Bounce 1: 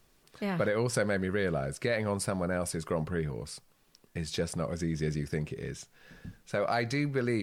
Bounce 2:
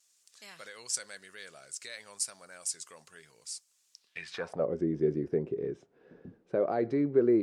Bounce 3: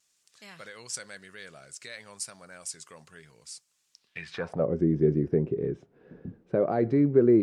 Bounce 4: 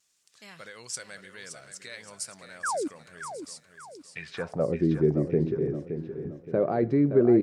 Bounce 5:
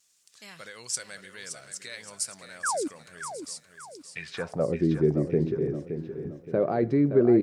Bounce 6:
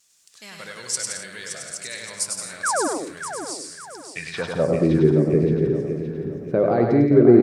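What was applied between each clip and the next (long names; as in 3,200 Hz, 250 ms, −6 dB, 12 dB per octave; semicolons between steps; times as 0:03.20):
pitch vibrato 0.96 Hz 23 cents; band-pass filter sweep 7,100 Hz → 380 Hz, 0:03.92–0:04.70; level +8.5 dB
bass and treble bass +9 dB, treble −6 dB; level +2.5 dB
sound drawn into the spectrogram fall, 0:02.63–0:02.88, 260–1,800 Hz −29 dBFS; on a send: repeating echo 570 ms, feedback 39%, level −9 dB
high-shelf EQ 3,800 Hz +6 dB
bouncing-ball delay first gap 100 ms, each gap 0.7×, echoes 5; level +5 dB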